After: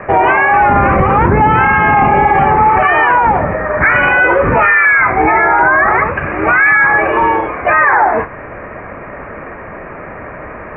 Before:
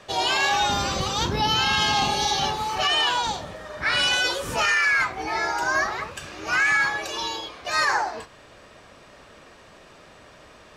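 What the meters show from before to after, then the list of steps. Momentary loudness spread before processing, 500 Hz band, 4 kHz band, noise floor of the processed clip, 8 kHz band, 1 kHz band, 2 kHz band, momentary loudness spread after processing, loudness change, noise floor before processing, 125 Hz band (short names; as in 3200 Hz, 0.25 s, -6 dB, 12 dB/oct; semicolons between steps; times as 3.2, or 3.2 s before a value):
10 LU, +17.5 dB, under -10 dB, -29 dBFS, under -40 dB, +15.5 dB, +13.0 dB, 20 LU, +12.5 dB, -50 dBFS, +16.5 dB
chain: steep low-pass 2300 Hz 72 dB/oct; maximiser +22.5 dB; gain -1 dB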